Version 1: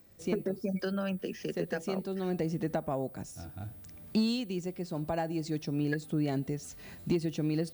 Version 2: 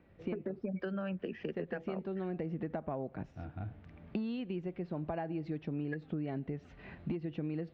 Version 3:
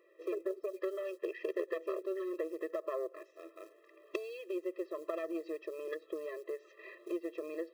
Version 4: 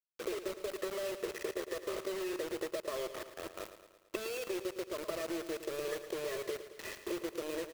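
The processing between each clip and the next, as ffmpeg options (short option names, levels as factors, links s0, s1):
-af "lowpass=f=2700:w=0.5412,lowpass=f=2700:w=1.3066,acompressor=threshold=0.0178:ratio=6,volume=1.12"
-af "aeval=exprs='0.075*(cos(1*acos(clip(val(0)/0.075,-1,1)))-cos(1*PI/2))+0.0211*(cos(3*acos(clip(val(0)/0.075,-1,1)))-cos(3*PI/2))+0.00473*(cos(4*acos(clip(val(0)/0.075,-1,1)))-cos(4*PI/2))+0.00531*(cos(5*acos(clip(val(0)/0.075,-1,1)))-cos(5*PI/2))+0.00119*(cos(8*acos(clip(val(0)/0.075,-1,1)))-cos(8*PI/2))':c=same,acrusher=bits=8:mode=log:mix=0:aa=0.000001,afftfilt=real='re*eq(mod(floor(b*sr/1024/340),2),1)':imag='im*eq(mod(floor(b*sr/1024/340),2),1)':win_size=1024:overlap=0.75,volume=2.99"
-af "acompressor=threshold=0.00891:ratio=8,acrusher=bits=7:mix=0:aa=0.000001,aecho=1:1:111|222|333|444|555|666:0.266|0.152|0.0864|0.0493|0.0281|0.016,volume=2"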